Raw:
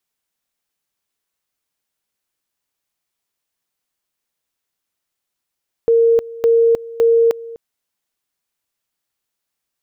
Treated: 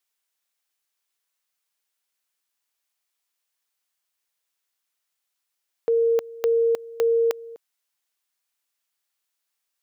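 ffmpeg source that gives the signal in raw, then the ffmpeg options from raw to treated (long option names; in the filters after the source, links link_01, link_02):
-f lavfi -i "aevalsrc='pow(10,(-9-19.5*gte(mod(t,0.56),0.31))/20)*sin(2*PI*461*t)':duration=1.68:sample_rate=44100"
-af "highpass=frequency=1000:poles=1"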